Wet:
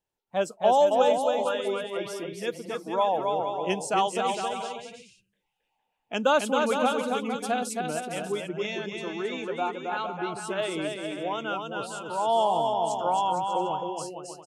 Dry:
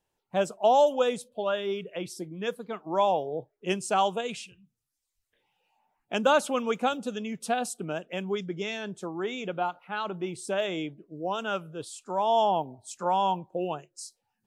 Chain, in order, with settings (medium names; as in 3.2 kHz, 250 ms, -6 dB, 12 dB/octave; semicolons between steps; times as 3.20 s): spectral noise reduction 7 dB; bouncing-ball echo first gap 270 ms, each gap 0.7×, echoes 5